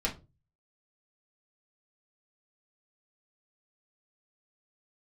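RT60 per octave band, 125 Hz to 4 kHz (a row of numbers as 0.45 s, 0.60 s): 0.55 s, 0.40 s, 0.35 s, 0.25 s, 0.20 s, 0.20 s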